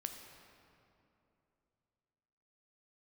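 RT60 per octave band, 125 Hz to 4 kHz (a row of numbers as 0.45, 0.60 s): 3.4, 3.2, 3.0, 2.7, 2.2, 1.7 s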